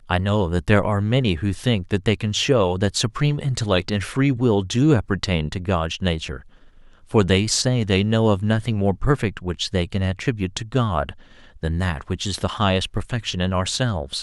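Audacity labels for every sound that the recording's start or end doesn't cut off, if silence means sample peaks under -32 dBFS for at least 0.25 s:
7.110000	11.110000	sound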